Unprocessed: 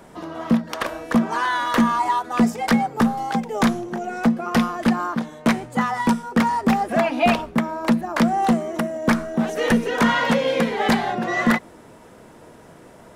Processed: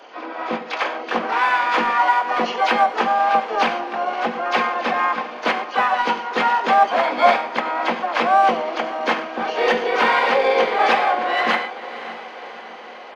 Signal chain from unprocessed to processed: nonlinear frequency compression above 2100 Hz 4:1; HPF 370 Hz 24 dB/oct; bell 810 Hz +5 dB 0.51 oct; comb 3.9 ms, depth 41%; in parallel at -12 dB: overloaded stage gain 22 dB; on the sum: diffused feedback echo 0.572 s, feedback 61%, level -15 dB; non-linear reverb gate 0.14 s flat, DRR 8.5 dB; harmoniser -4 st -11 dB, +7 st -8 dB, +12 st -14 dB; gain -1 dB

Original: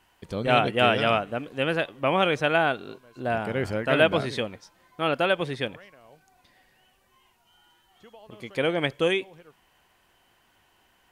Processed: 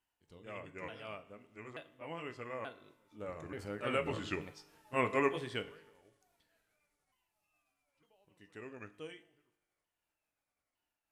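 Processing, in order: repeated pitch sweeps -5.5 st, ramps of 0.895 s; Doppler pass-by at 4.89, 5 m/s, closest 2.5 m; high shelf 5200 Hz +7.5 dB; resonator 51 Hz, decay 1.1 s, harmonics all, mix 40%; FDN reverb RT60 0.41 s, low-frequency decay 0.8×, high-frequency decay 0.95×, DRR 10.5 dB; gain -2 dB

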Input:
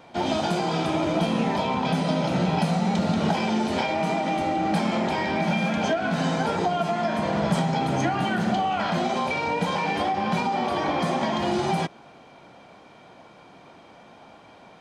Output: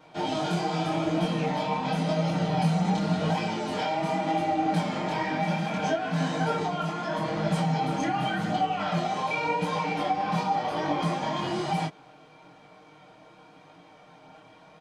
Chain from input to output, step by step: comb 6.5 ms, depth 87%; chorus voices 2, 0.87 Hz, delay 22 ms, depth 4.6 ms; gain -3 dB

